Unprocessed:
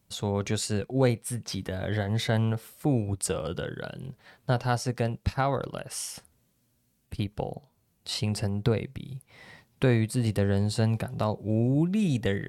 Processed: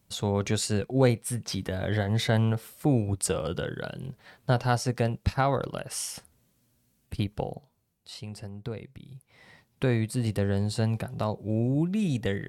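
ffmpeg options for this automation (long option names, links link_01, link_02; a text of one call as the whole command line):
ffmpeg -i in.wav -af "volume=11dB,afade=type=out:start_time=7.3:duration=0.8:silence=0.237137,afade=type=in:start_time=8.67:duration=1.44:silence=0.334965" out.wav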